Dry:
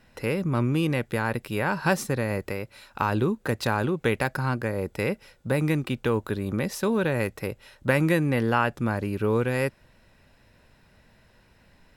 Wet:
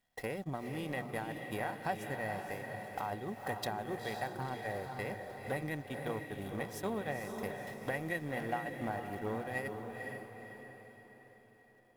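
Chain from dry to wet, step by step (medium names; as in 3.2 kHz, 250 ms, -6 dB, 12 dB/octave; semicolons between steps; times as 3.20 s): jump at every zero crossing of -36.5 dBFS; hum notches 60/120/180 Hz; peak limiter -19.5 dBFS, peak gain reduction 10.5 dB; treble shelf 7.8 kHz +7 dB; small resonant body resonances 730/1900/3300 Hz, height 15 dB, ringing for 45 ms; dynamic bell 740 Hz, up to +4 dB, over -42 dBFS, Q 1.6; compression 6:1, threshold -30 dBFS, peak gain reduction 11.5 dB; gate -31 dBFS, range -43 dB; echo that smears into a reverb 489 ms, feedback 48%, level -5.5 dB; transformer saturation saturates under 550 Hz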